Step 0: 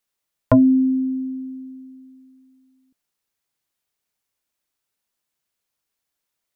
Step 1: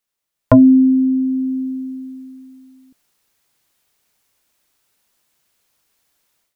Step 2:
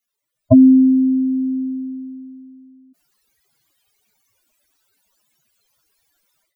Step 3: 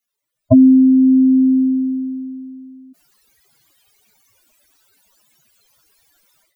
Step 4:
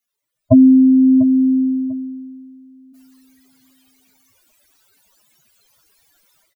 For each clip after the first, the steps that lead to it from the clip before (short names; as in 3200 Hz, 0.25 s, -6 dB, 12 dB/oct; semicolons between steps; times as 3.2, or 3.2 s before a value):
AGC gain up to 14 dB
spectral contrast raised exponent 3.8; gain +1 dB
vocal rider within 4 dB 0.5 s; gain +4 dB
feedback echo 0.695 s, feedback 23%, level -16.5 dB